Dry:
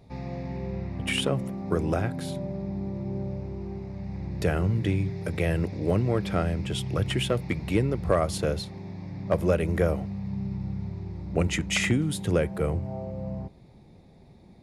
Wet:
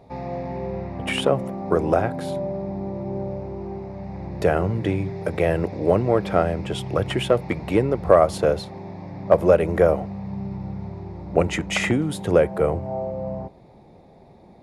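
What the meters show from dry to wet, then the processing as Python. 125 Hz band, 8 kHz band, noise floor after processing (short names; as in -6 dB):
0.0 dB, -1.0 dB, -49 dBFS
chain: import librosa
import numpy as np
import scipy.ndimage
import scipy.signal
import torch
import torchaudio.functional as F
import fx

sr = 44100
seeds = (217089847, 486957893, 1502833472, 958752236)

y = fx.peak_eq(x, sr, hz=710.0, db=12.5, octaves=2.4)
y = F.gain(torch.from_numpy(y), -1.5).numpy()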